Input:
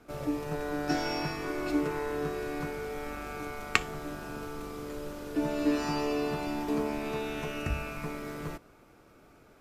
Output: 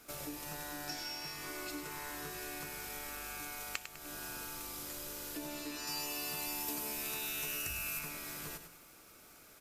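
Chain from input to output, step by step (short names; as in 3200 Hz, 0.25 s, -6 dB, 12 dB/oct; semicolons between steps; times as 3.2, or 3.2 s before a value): pre-emphasis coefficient 0.9; de-hum 55.14 Hz, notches 8; compressor 4:1, threshold -54 dBFS, peak gain reduction 22 dB; 5.87–7.99 high shelf 6500 Hz +10.5 dB; feedback echo 0.101 s, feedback 41%, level -9 dB; gain +12.5 dB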